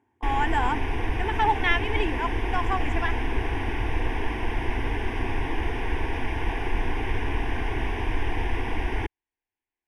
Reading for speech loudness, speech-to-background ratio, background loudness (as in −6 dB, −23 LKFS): −28.0 LKFS, 2.0 dB, −30.0 LKFS